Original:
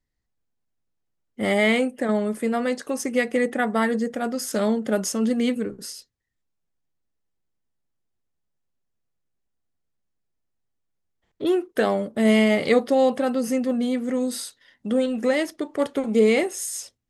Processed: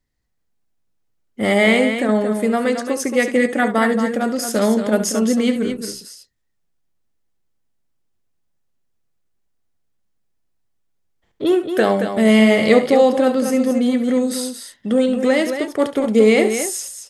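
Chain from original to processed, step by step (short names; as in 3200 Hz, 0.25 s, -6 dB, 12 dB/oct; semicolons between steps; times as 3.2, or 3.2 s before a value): loudspeakers at several distances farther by 24 m -12 dB, 77 m -8 dB; gain +5 dB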